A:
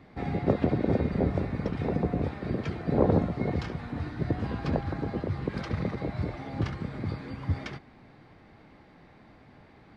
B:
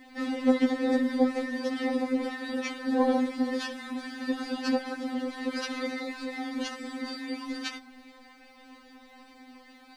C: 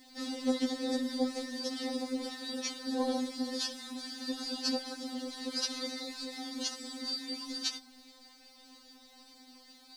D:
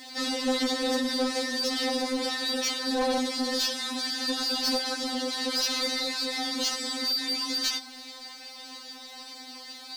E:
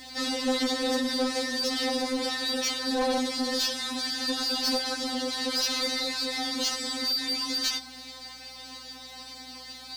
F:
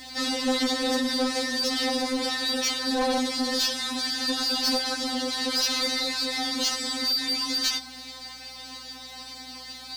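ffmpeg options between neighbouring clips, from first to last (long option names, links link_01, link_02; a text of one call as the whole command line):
ffmpeg -i in.wav -af "crystalizer=i=4.5:c=0,afftfilt=real='re*3.46*eq(mod(b,12),0)':imag='im*3.46*eq(mod(b,12),0)':win_size=2048:overlap=0.75,volume=3dB" out.wav
ffmpeg -i in.wav -af "highshelf=frequency=3200:width_type=q:width=1.5:gain=12,volume=-7.5dB" out.wav
ffmpeg -i in.wav -filter_complex "[0:a]asplit=2[link_01][link_02];[link_02]highpass=frequency=720:poles=1,volume=22dB,asoftclip=type=tanh:threshold=-18dB[link_03];[link_01][link_03]amix=inputs=2:normalize=0,lowpass=frequency=6000:poles=1,volume=-6dB" out.wav
ffmpeg -i in.wav -af "aeval=exprs='val(0)+0.000891*(sin(2*PI*60*n/s)+sin(2*PI*2*60*n/s)/2+sin(2*PI*3*60*n/s)/3+sin(2*PI*4*60*n/s)/4+sin(2*PI*5*60*n/s)/5)':channel_layout=same" out.wav
ffmpeg -i in.wav -af "equalizer=frequency=410:width=5.6:gain=-12.5,volume=2.5dB" out.wav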